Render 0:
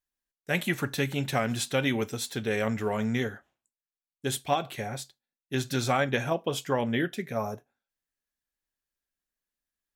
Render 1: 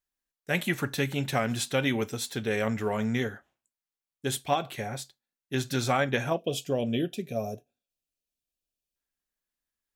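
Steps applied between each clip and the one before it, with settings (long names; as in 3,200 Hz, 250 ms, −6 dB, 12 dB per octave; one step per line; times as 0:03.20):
gain on a spectral selection 0:06.38–0:08.96, 770–2,300 Hz −15 dB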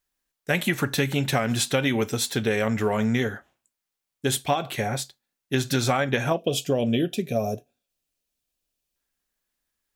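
downward compressor, threshold −27 dBFS, peak gain reduction 7.5 dB
level +8 dB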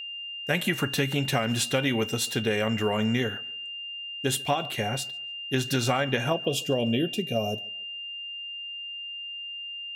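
tape delay 142 ms, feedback 35%, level −23.5 dB, low-pass 4,600 Hz
steady tone 2,800 Hz −32 dBFS
level −2.5 dB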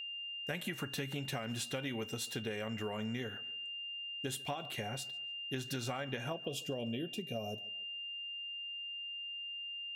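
downward compressor 2.5 to 1, threshold −33 dBFS, peak gain reduction 9 dB
level −6 dB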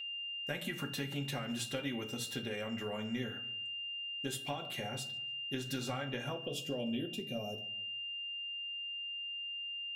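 convolution reverb RT60 0.45 s, pre-delay 4 ms, DRR 3 dB
level −2 dB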